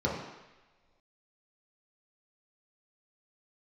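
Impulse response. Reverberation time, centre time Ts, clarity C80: no single decay rate, 53 ms, 5.5 dB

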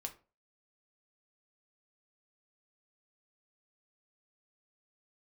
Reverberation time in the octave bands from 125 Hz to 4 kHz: 0.40 s, 0.35 s, 0.35 s, 0.30 s, 0.25 s, 0.20 s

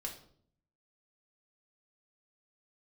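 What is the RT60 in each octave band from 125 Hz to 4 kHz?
1.0 s, 0.80 s, 0.65 s, 0.50 s, 0.40 s, 0.45 s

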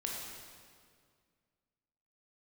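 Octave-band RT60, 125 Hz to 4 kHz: 2.5 s, 2.4 s, 2.1 s, 1.9 s, 1.8 s, 1.6 s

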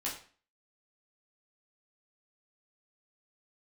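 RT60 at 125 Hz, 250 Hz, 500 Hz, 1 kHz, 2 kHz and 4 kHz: 0.40 s, 0.45 s, 0.40 s, 0.40 s, 0.40 s, 0.40 s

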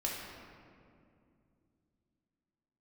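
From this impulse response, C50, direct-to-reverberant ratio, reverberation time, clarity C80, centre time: 0.5 dB, -4.0 dB, 2.4 s, 2.0 dB, 102 ms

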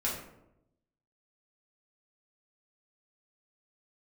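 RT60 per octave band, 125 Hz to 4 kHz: 1.2 s, 1.1 s, 0.95 s, 0.75 s, 0.60 s, 0.40 s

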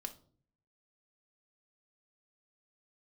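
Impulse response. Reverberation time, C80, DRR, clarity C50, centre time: no single decay rate, 20.0 dB, 5.5 dB, 14.5 dB, 6 ms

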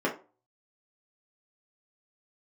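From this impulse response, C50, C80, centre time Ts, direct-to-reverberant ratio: 10.5 dB, 17.0 dB, 17 ms, -5.0 dB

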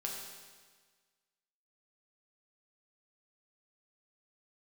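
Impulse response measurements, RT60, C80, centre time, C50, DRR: 1.5 s, 3.5 dB, 68 ms, 2.0 dB, -2.0 dB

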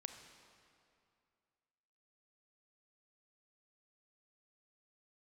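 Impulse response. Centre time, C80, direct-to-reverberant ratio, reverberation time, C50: 36 ms, 8.0 dB, 6.5 dB, 2.4 s, 7.0 dB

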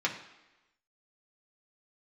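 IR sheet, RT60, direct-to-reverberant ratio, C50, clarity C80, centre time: 1.0 s, -2.5 dB, 9.0 dB, 11.5 dB, 20 ms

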